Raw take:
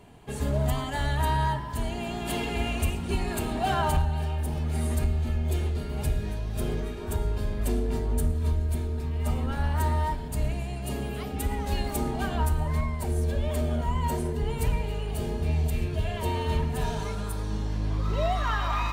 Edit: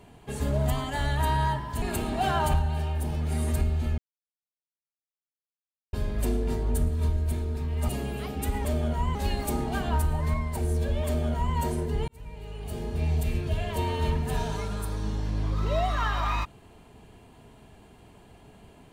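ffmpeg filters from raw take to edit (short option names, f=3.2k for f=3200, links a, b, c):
-filter_complex "[0:a]asplit=8[a][b][c][d][e][f][g][h];[a]atrim=end=1.822[i];[b]atrim=start=3.248:end=5.41,asetpts=PTS-STARTPTS,afade=t=out:st=2.158:d=0.004:c=hsin[j];[c]atrim=start=5.41:end=7.36,asetpts=PTS-STARTPTS,volume=0[k];[d]atrim=start=7.36:end=9.322,asetpts=PTS-STARTPTS,afade=t=in:d=0.004:c=hsin[l];[e]atrim=start=10.858:end=11.622[m];[f]atrim=start=13.528:end=14.032[n];[g]atrim=start=11.618:end=14.55,asetpts=PTS-STARTPTS,afade=t=out:st=2.928:d=0.004:c=hsin[o];[h]atrim=start=14.55,asetpts=PTS-STARTPTS,afade=t=in:d=1.07[p];[j][k][l]concat=n=3:v=0:a=1[q];[i][q]acrossfade=d=0.004:c1=hsin:c2=hsin[r];[r][m]acrossfade=d=0.004:c1=hsin:c2=hsin[s];[s][n]acrossfade=d=0.004:c1=hsin:c2=hsin[t];[o][p]concat=n=2:v=0:a=1[u];[t][u]acrossfade=d=0.004:c1=hsin:c2=hsin"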